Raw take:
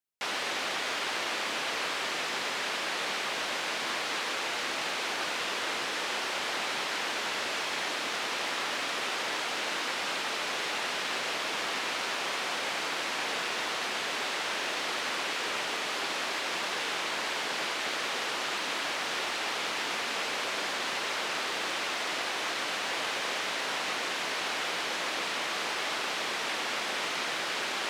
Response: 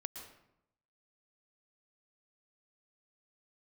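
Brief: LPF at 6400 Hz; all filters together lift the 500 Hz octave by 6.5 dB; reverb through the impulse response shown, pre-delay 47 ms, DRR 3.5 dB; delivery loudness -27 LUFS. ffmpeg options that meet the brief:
-filter_complex "[0:a]lowpass=6.4k,equalizer=f=500:t=o:g=8,asplit=2[a][b];[1:a]atrim=start_sample=2205,adelay=47[c];[b][c]afir=irnorm=-1:irlink=0,volume=-1.5dB[d];[a][d]amix=inputs=2:normalize=0,volume=1.5dB"

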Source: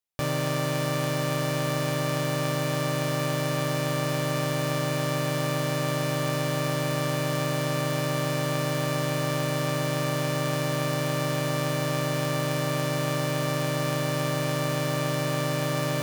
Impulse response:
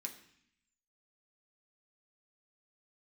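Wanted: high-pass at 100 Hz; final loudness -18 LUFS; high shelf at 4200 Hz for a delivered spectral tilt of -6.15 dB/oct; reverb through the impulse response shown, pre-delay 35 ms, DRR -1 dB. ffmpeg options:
-filter_complex "[0:a]highpass=100,highshelf=f=4.2k:g=-7,asplit=2[a][b];[1:a]atrim=start_sample=2205,adelay=35[c];[b][c]afir=irnorm=-1:irlink=0,volume=4dB[d];[a][d]amix=inputs=2:normalize=0,volume=4.5dB"

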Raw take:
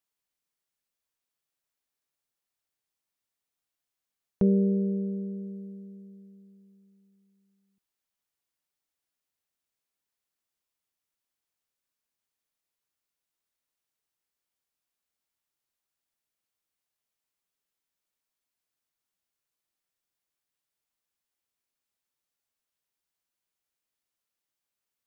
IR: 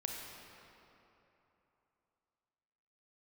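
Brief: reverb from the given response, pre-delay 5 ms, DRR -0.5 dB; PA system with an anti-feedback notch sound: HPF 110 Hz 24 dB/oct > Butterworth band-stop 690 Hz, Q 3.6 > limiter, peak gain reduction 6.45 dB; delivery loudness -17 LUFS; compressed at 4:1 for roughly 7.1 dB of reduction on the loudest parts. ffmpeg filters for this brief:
-filter_complex "[0:a]acompressor=threshold=-27dB:ratio=4,asplit=2[a][b];[1:a]atrim=start_sample=2205,adelay=5[c];[b][c]afir=irnorm=-1:irlink=0,volume=-0.5dB[d];[a][d]amix=inputs=2:normalize=0,highpass=f=110:w=0.5412,highpass=f=110:w=1.3066,asuperstop=centerf=690:order=8:qfactor=3.6,volume=15.5dB,alimiter=limit=-7dB:level=0:latency=1"

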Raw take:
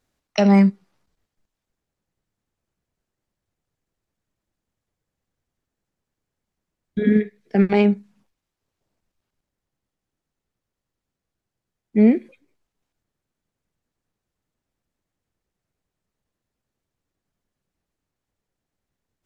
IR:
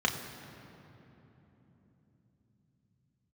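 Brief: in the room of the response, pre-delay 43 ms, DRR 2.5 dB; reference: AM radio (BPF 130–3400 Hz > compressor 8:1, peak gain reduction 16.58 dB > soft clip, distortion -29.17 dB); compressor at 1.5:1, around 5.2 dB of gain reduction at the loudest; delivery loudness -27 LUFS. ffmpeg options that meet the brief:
-filter_complex "[0:a]acompressor=threshold=-25dB:ratio=1.5,asplit=2[a][b];[1:a]atrim=start_sample=2205,adelay=43[c];[b][c]afir=irnorm=-1:irlink=0,volume=-12.5dB[d];[a][d]amix=inputs=2:normalize=0,highpass=130,lowpass=3.4k,acompressor=threshold=-28dB:ratio=8,asoftclip=threshold=-18dB,volume=8dB"

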